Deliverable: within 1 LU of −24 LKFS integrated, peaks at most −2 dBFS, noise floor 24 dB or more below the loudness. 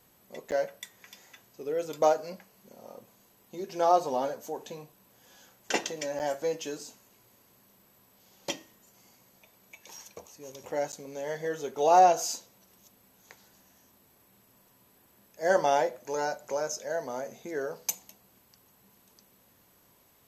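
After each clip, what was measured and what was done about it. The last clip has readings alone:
number of dropouts 3; longest dropout 9.0 ms; integrated loudness −29.5 LKFS; sample peak −10.0 dBFS; target loudness −24.0 LKFS
→ repair the gap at 0:00.51/0:06.19/0:10.92, 9 ms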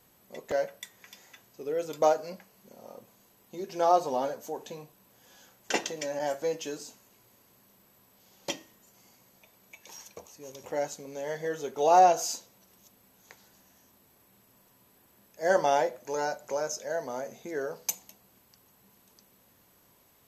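number of dropouts 0; integrated loudness −29.5 LKFS; sample peak −10.0 dBFS; target loudness −24.0 LKFS
→ level +5.5 dB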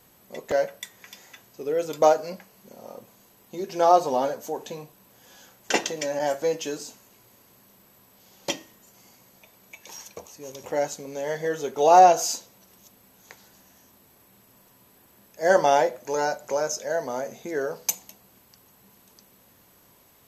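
integrated loudness −24.0 LKFS; sample peak −4.5 dBFS; background noise floor −58 dBFS

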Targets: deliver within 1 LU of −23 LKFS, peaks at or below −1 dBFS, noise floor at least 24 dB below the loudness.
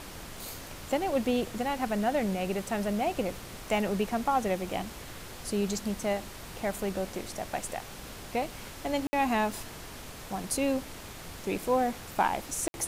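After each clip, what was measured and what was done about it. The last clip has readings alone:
number of dropouts 2; longest dropout 60 ms; background noise floor −44 dBFS; target noise floor −56 dBFS; integrated loudness −31.5 LKFS; sample peak −13.5 dBFS; target loudness −23.0 LKFS
→ repair the gap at 0:09.07/0:12.68, 60 ms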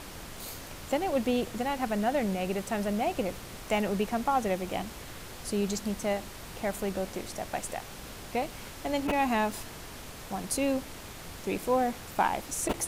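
number of dropouts 0; background noise floor −44 dBFS; target noise floor −56 dBFS
→ noise reduction from a noise print 12 dB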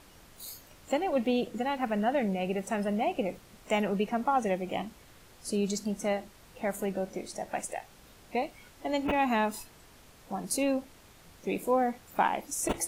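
background noise floor −56 dBFS; integrated loudness −31.5 LKFS; sample peak −13.5 dBFS; target loudness −23.0 LKFS
→ level +8.5 dB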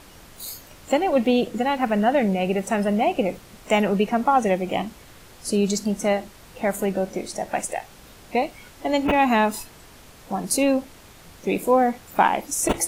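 integrated loudness −23.0 LKFS; sample peak −5.0 dBFS; background noise floor −47 dBFS

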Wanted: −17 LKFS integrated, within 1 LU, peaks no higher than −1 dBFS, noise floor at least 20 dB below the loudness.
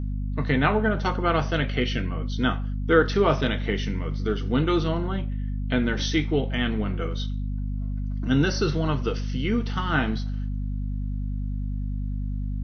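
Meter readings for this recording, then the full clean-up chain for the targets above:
mains hum 50 Hz; hum harmonics up to 250 Hz; level of the hum −26 dBFS; integrated loudness −26.0 LKFS; sample peak −5.5 dBFS; target loudness −17.0 LKFS
→ mains-hum notches 50/100/150/200/250 Hz
level +9 dB
brickwall limiter −1 dBFS

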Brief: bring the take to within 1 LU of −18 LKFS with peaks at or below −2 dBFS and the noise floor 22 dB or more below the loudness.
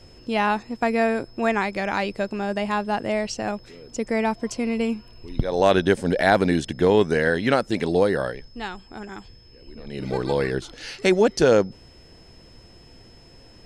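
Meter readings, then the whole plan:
interfering tone 5,200 Hz; level of the tone −53 dBFS; integrated loudness −23.0 LKFS; sample peak −5.0 dBFS; target loudness −18.0 LKFS
→ notch filter 5,200 Hz, Q 30
level +5 dB
brickwall limiter −2 dBFS

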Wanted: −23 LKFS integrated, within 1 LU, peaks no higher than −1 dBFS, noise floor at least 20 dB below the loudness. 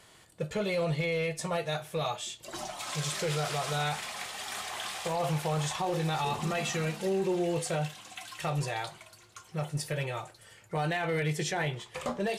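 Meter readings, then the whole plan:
share of clipped samples 0.7%; peaks flattened at −23.5 dBFS; integrated loudness −32.5 LKFS; sample peak −23.5 dBFS; target loudness −23.0 LKFS
→ clipped peaks rebuilt −23.5 dBFS
level +9.5 dB

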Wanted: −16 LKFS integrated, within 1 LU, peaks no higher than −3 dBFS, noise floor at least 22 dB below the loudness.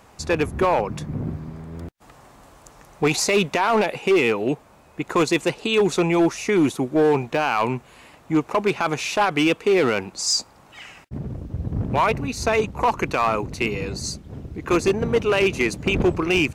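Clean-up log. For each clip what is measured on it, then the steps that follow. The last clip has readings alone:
share of clipped samples 1.2%; peaks flattened at −12.5 dBFS; integrated loudness −21.5 LKFS; sample peak −12.5 dBFS; target loudness −16.0 LKFS
→ clipped peaks rebuilt −12.5 dBFS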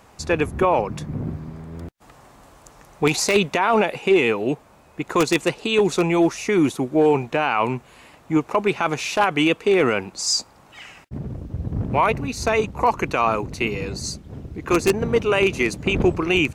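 share of clipped samples 0.0%; integrated loudness −21.0 LKFS; sample peak −3.5 dBFS; target loudness −16.0 LKFS
→ level +5 dB
brickwall limiter −3 dBFS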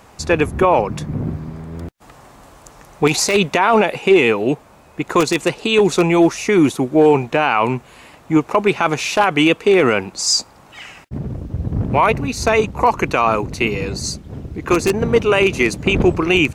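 integrated loudness −16.5 LKFS; sample peak −3.0 dBFS; background noise floor −46 dBFS

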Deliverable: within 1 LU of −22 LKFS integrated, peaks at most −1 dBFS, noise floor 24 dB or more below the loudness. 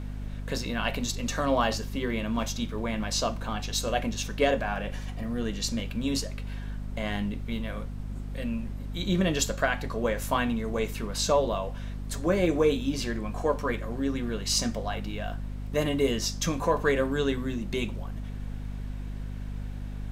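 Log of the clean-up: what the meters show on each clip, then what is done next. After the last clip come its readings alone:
mains hum 50 Hz; hum harmonics up to 250 Hz; level of the hum −33 dBFS; background noise floor −36 dBFS; target noise floor −54 dBFS; integrated loudness −29.5 LKFS; sample peak −12.0 dBFS; target loudness −22.0 LKFS
→ mains-hum notches 50/100/150/200/250 Hz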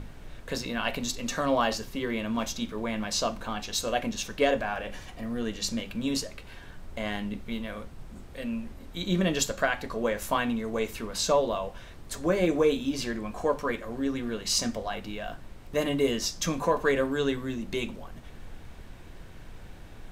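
mains hum none found; background noise floor −46 dBFS; target noise floor −54 dBFS
→ noise reduction from a noise print 8 dB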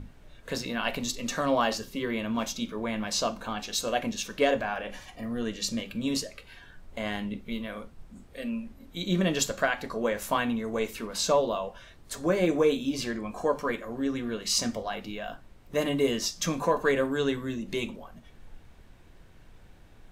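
background noise floor −53 dBFS; target noise floor −54 dBFS
→ noise reduction from a noise print 6 dB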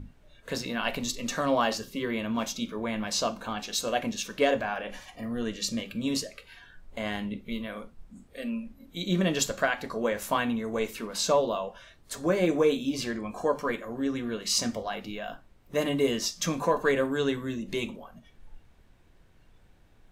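background noise floor −58 dBFS; integrated loudness −29.5 LKFS; sample peak −12.5 dBFS; target loudness −22.0 LKFS
→ level +7.5 dB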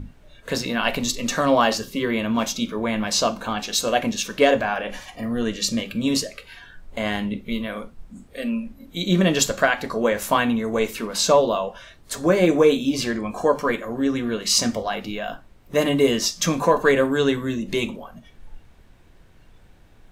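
integrated loudness −22.0 LKFS; sample peak −5.0 dBFS; background noise floor −51 dBFS

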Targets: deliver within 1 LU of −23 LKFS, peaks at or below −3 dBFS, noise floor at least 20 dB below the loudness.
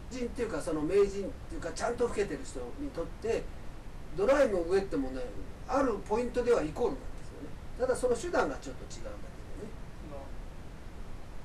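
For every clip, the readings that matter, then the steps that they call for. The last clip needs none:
share of clipped samples 0.5%; peaks flattened at −19.5 dBFS; background noise floor −46 dBFS; target noise floor −52 dBFS; integrated loudness −32.0 LKFS; sample peak −19.5 dBFS; target loudness −23.0 LKFS
→ clipped peaks rebuilt −19.5 dBFS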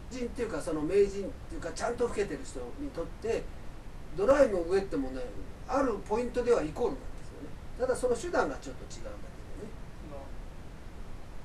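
share of clipped samples 0.0%; background noise floor −46 dBFS; target noise floor −52 dBFS
→ noise reduction from a noise print 6 dB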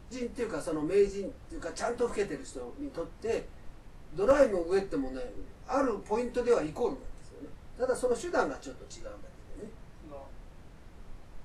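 background noise floor −52 dBFS; integrated loudness −31.5 LKFS; sample peak −10.5 dBFS; target loudness −23.0 LKFS
→ level +8.5 dB
brickwall limiter −3 dBFS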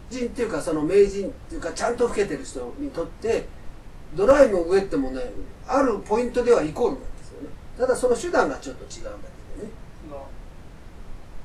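integrated loudness −23.0 LKFS; sample peak −3.0 dBFS; background noise floor −43 dBFS

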